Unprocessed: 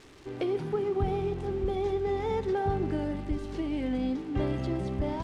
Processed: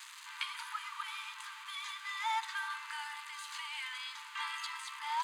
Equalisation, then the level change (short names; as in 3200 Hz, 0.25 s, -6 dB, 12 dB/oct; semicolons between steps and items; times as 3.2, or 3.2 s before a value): brick-wall FIR high-pass 870 Hz; high shelf 5400 Hz +9.5 dB; notch 5500 Hz, Q 5.7; +5.5 dB